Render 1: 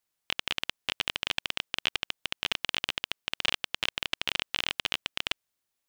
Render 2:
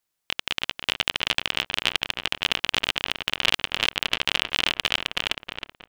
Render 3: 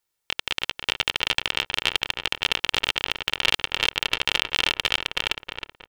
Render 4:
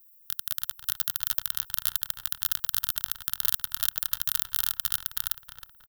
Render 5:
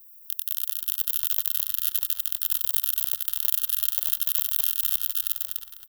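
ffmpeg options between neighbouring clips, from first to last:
-filter_complex "[0:a]dynaudnorm=f=110:g=13:m=1.68,asplit=2[s0][s1];[s1]adelay=317,lowpass=f=2200:p=1,volume=0.562,asplit=2[s2][s3];[s3]adelay=317,lowpass=f=2200:p=1,volume=0.4,asplit=2[s4][s5];[s5]adelay=317,lowpass=f=2200:p=1,volume=0.4,asplit=2[s6][s7];[s7]adelay=317,lowpass=f=2200:p=1,volume=0.4,asplit=2[s8][s9];[s9]adelay=317,lowpass=f=2200:p=1,volume=0.4[s10];[s2][s4][s6][s8][s10]amix=inputs=5:normalize=0[s11];[s0][s11]amix=inputs=2:normalize=0,volume=1.33"
-af "aecho=1:1:2.2:0.4"
-af "firequalizer=gain_entry='entry(100,0);entry(350,-22);entry(1500,1);entry(2300,-24);entry(3500,-4);entry(7500,11);entry(12000,8)':delay=0.05:min_phase=1,aexciter=amount=7.2:drive=9.2:freq=11000,volume=0.447"
-af "aecho=1:1:93.29|244.9:0.562|0.631,aexciter=amount=1.8:drive=8.8:freq=2300,volume=0.376"

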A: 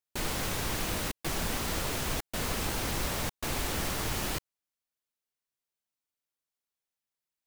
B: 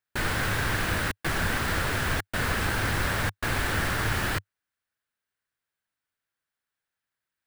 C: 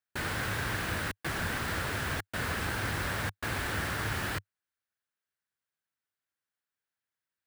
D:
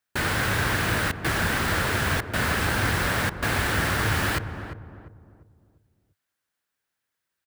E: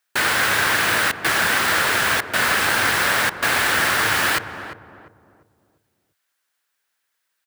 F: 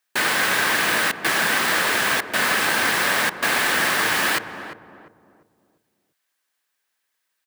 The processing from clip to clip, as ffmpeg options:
-af "equalizer=f=100:t=o:w=0.67:g=8,equalizer=f=1600:t=o:w=0.67:g=11,equalizer=f=6300:t=o:w=0.67:g=-5,equalizer=f=16000:t=o:w=0.67:g=-7,volume=1.41"
-af "highpass=52,volume=0.531"
-filter_complex "[0:a]asplit=2[s0][s1];[s1]adelay=348,lowpass=f=890:p=1,volume=0.398,asplit=2[s2][s3];[s3]adelay=348,lowpass=f=890:p=1,volume=0.41,asplit=2[s4][s5];[s5]adelay=348,lowpass=f=890:p=1,volume=0.41,asplit=2[s6][s7];[s7]adelay=348,lowpass=f=890:p=1,volume=0.41,asplit=2[s8][s9];[s9]adelay=348,lowpass=f=890:p=1,volume=0.41[s10];[s0][s2][s4][s6][s8][s10]amix=inputs=6:normalize=0,volume=2.66"
-af "highpass=f=800:p=1,volume=2.66"
-af "lowshelf=f=140:t=q:w=1.5:g=-7.5,bandreject=f=1400:w=13,volume=0.891"

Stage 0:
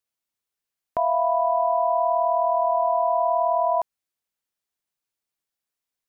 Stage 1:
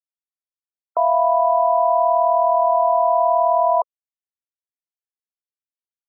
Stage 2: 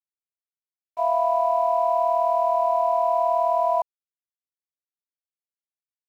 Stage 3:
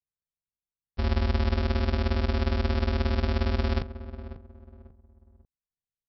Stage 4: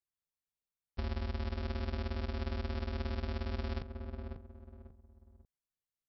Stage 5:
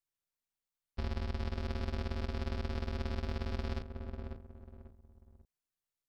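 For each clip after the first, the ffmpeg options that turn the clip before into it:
-af "afftfilt=real='re*gte(hypot(re,im),0.0316)':imag='im*gte(hypot(re,im),0.0316)':win_size=1024:overlap=0.75,highpass=f=430:w=0.5412,highpass=f=430:w=1.3066,volume=1.78"
-af "agate=range=0.0224:threshold=0.316:ratio=3:detection=peak,aeval=exprs='sgn(val(0))*max(abs(val(0))-0.00282,0)':c=same,volume=1.19"
-filter_complex "[0:a]aresample=11025,acrusher=samples=36:mix=1:aa=0.000001,aresample=44100,asplit=2[s0][s1];[s1]adelay=543,lowpass=f=1000:p=1,volume=0.237,asplit=2[s2][s3];[s3]adelay=543,lowpass=f=1000:p=1,volume=0.33,asplit=2[s4][s5];[s5]adelay=543,lowpass=f=1000:p=1,volume=0.33[s6];[s0][s2][s4][s6]amix=inputs=4:normalize=0,volume=0.708"
-af "acompressor=threshold=0.0316:ratio=6,volume=0.668"
-af "aeval=exprs='if(lt(val(0),0),0.447*val(0),val(0))':c=same,volume=1.33"

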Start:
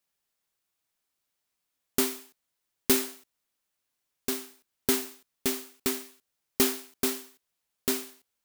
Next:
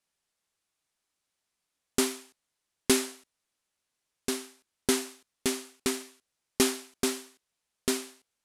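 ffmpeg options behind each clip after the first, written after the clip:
-af "lowpass=f=11000:w=0.5412,lowpass=f=11000:w=1.3066,volume=1.12"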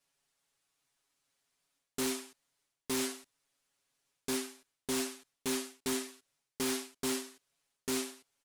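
-af "areverse,acompressor=threshold=0.0251:ratio=12,areverse,aecho=1:1:7.2:0.94,aeval=exprs='0.0447*(abs(mod(val(0)/0.0447+3,4)-2)-1)':c=same"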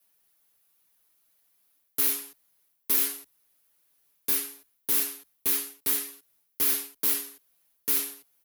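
-filter_complex "[0:a]acrossover=split=1100[s0][s1];[s0]acompressor=threshold=0.00631:ratio=6[s2];[s2][s1]amix=inputs=2:normalize=0,afreqshift=20,aexciter=amount=7:drive=7.3:freq=11000,volume=1.41"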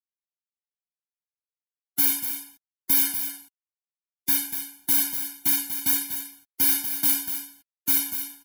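-af "acrusher=bits=8:mix=0:aa=0.000001,aecho=1:1:241:0.355,afftfilt=real='re*eq(mod(floor(b*sr/1024/350),2),0)':imag='im*eq(mod(floor(b*sr/1024/350),2),0)':win_size=1024:overlap=0.75,volume=2.24"

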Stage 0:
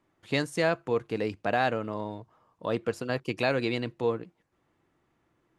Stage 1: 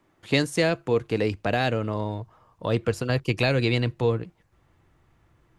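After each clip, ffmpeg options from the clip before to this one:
-filter_complex "[0:a]asubboost=boost=5.5:cutoff=110,acrossover=split=550|2000[s0][s1][s2];[s1]acompressor=threshold=0.0112:ratio=6[s3];[s0][s3][s2]amix=inputs=3:normalize=0,volume=2.24"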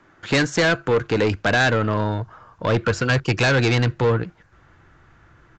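-af "equalizer=f=1500:t=o:w=0.51:g=11.5,aresample=16000,asoftclip=type=tanh:threshold=0.0794,aresample=44100,volume=2.66"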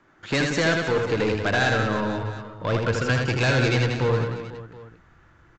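-af "aecho=1:1:80|184|319.2|495|723.4:0.631|0.398|0.251|0.158|0.1,volume=0.562"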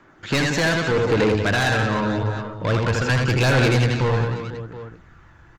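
-af "aeval=exprs='0.266*(cos(1*acos(clip(val(0)/0.266,-1,1)))-cos(1*PI/2))+0.0376*(cos(5*acos(clip(val(0)/0.266,-1,1)))-cos(5*PI/2))+0.0168*(cos(6*acos(clip(val(0)/0.266,-1,1)))-cos(6*PI/2))':c=same,aphaser=in_gain=1:out_gain=1:delay=1.2:decay=0.28:speed=0.83:type=sinusoidal"

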